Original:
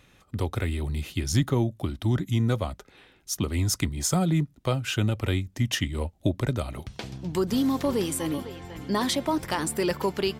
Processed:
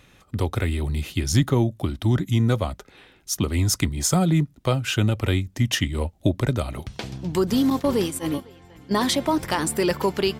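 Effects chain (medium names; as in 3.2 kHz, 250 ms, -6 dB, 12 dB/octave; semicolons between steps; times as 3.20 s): 7.70–9.08 s: gate -28 dBFS, range -12 dB; trim +4 dB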